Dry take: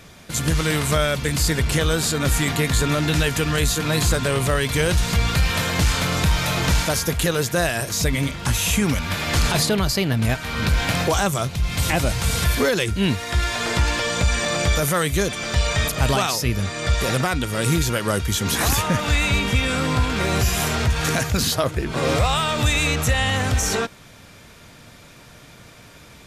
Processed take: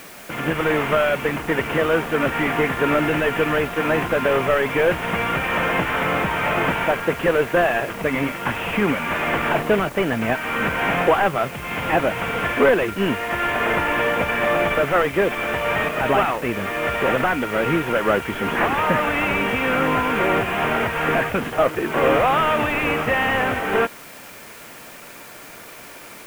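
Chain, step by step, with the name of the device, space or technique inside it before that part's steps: army field radio (band-pass 300–3200 Hz; CVSD coder 16 kbps; white noise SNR 23 dB); trim +7 dB

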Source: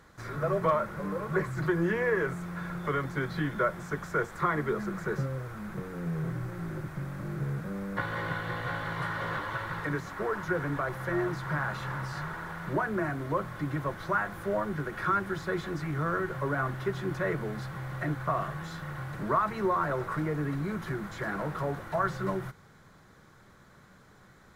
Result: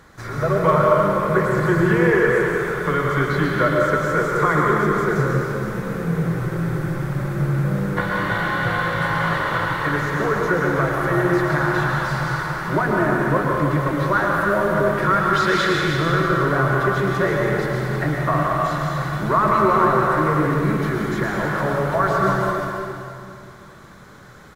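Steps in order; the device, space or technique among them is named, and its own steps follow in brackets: 15.33–15.75 s: frequency weighting D; cave (delay 317 ms -11.5 dB; reverberation RT60 2.4 s, pre-delay 102 ms, DRR -2 dB); trim +8 dB

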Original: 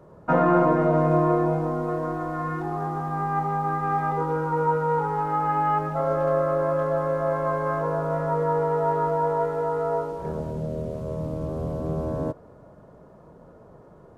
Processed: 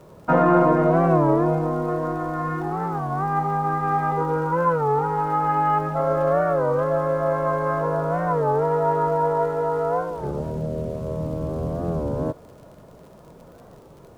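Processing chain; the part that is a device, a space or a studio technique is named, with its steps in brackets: warped LP (warped record 33 1/3 rpm, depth 160 cents; crackle 62 per s -43 dBFS; pink noise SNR 40 dB); trim +2.5 dB

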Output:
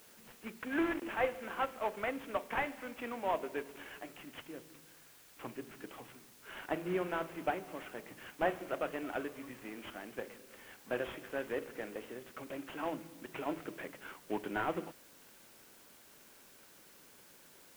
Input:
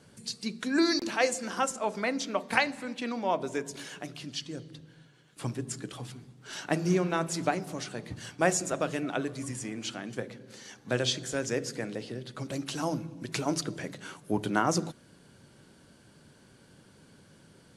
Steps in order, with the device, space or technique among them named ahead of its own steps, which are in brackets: army field radio (band-pass 330–3400 Hz; CVSD coder 16 kbps; white noise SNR 20 dB); trim -4 dB

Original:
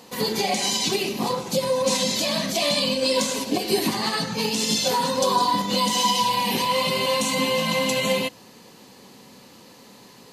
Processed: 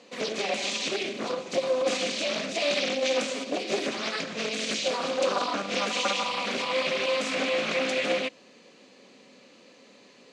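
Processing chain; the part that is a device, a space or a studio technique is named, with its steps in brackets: full-range speaker at full volume (loudspeaker Doppler distortion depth 0.89 ms; cabinet simulation 250–7000 Hz, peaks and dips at 260 Hz +3 dB, 570 Hz +6 dB, 900 Hz -9 dB, 2.4 kHz +6 dB, 5.2 kHz -4 dB); trim -5.5 dB

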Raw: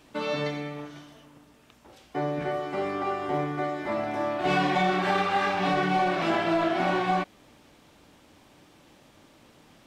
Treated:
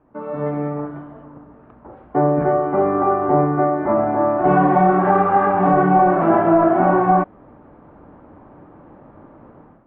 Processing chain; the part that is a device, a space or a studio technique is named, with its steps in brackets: action camera in a waterproof case (low-pass 1.3 kHz 24 dB/octave; level rider gain up to 14 dB; trim -1 dB; AAC 64 kbps 48 kHz)

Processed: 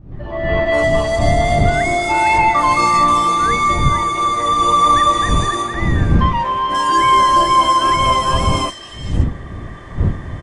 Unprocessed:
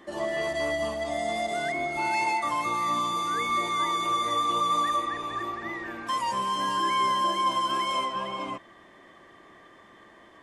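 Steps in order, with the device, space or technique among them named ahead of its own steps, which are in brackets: three bands offset in time lows, mids, highs 120/660 ms, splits 180/3300 Hz; smartphone video outdoors (wind noise 120 Hz -33 dBFS; level rider gain up to 16 dB; AAC 48 kbps 22.05 kHz)

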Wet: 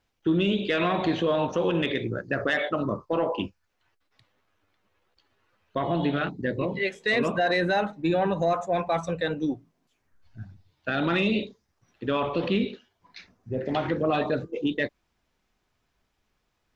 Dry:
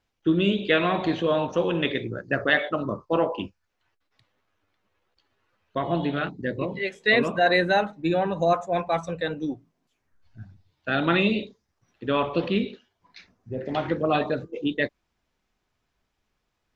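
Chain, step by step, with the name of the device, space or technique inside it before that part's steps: soft clipper into limiter (saturation -9 dBFS, distortion -26 dB; peak limiter -18 dBFS, peak gain reduction 7.5 dB); trim +2 dB

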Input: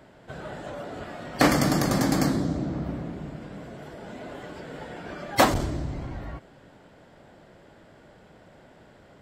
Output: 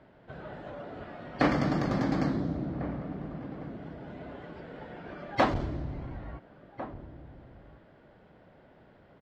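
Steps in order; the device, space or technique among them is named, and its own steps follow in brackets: shout across a valley (distance through air 230 m; echo from a far wall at 240 m, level -13 dB); trim -4.5 dB

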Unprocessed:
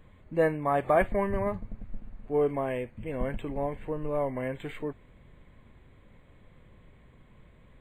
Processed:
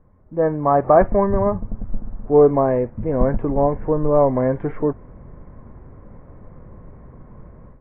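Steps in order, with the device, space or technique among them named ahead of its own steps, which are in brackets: action camera in a waterproof case (low-pass 1.3 kHz 24 dB/octave; level rider gain up to 14.5 dB; AAC 128 kbps 48 kHz)

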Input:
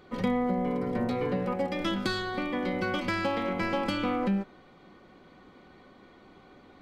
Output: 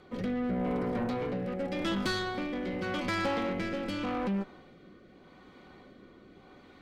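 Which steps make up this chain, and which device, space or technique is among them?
overdriven rotary cabinet (valve stage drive 29 dB, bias 0.4; rotary cabinet horn 0.85 Hz); trim +3.5 dB

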